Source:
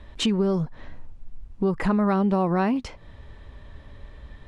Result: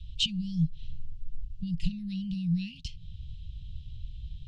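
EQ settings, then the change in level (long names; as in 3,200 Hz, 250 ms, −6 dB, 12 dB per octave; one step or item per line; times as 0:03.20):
Chebyshev band-stop filter 170–2,800 Hz, order 5
dynamic equaliser 110 Hz, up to −4 dB, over −44 dBFS, Q 1.3
high-frequency loss of the air 96 metres
+4.0 dB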